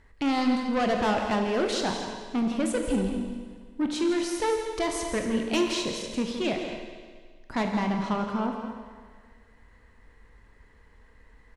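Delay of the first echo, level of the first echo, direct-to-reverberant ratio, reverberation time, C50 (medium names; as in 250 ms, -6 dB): 167 ms, -9.5 dB, 2.0 dB, 1.7 s, 3.0 dB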